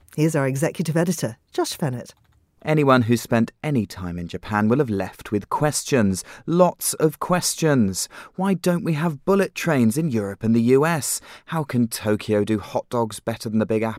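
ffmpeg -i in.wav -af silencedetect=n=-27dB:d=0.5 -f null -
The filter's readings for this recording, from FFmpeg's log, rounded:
silence_start: 2.01
silence_end: 2.65 | silence_duration: 0.64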